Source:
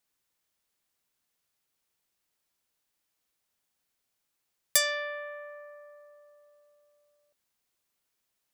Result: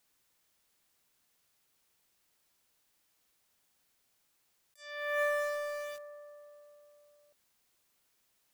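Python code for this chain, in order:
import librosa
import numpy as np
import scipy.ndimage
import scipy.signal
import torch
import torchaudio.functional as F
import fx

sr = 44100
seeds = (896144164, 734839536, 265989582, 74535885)

p1 = fx.quant_dither(x, sr, seeds[0], bits=8, dither='none')
p2 = x + (p1 * librosa.db_to_amplitude(-5.0))
y = fx.over_compress(p2, sr, threshold_db=-35.0, ratio=-0.5)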